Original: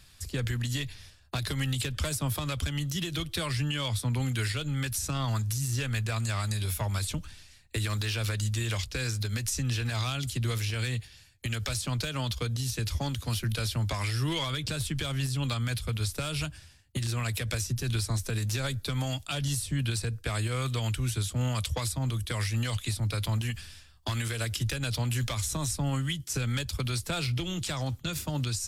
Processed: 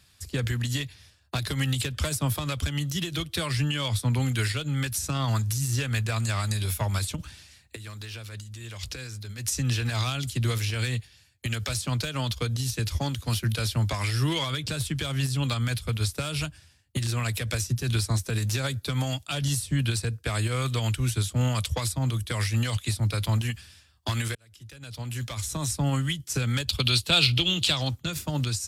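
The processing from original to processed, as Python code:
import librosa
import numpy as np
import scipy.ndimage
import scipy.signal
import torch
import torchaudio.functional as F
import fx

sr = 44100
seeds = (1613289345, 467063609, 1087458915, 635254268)

y = fx.over_compress(x, sr, threshold_db=-37.0, ratio=-1.0, at=(7.15, 9.44), fade=0.02)
y = fx.band_shelf(y, sr, hz=3400.0, db=10.5, octaves=1.0, at=(26.68, 27.89))
y = fx.edit(y, sr, fx.fade_in_span(start_s=24.35, length_s=1.39), tone=tone)
y = scipy.signal.sosfilt(scipy.signal.butter(2, 54.0, 'highpass', fs=sr, output='sos'), y)
y = fx.upward_expand(y, sr, threshold_db=-42.0, expansion=1.5)
y = y * 10.0 ** (6.0 / 20.0)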